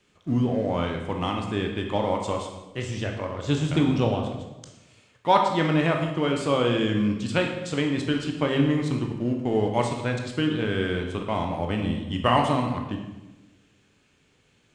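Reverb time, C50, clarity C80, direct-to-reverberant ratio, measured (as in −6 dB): 1.0 s, 5.0 dB, 7.0 dB, 2.0 dB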